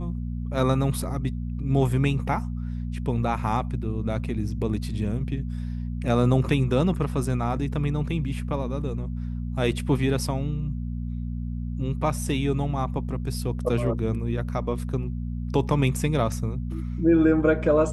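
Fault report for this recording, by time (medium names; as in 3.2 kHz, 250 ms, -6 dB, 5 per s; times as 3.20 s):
hum 60 Hz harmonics 4 -30 dBFS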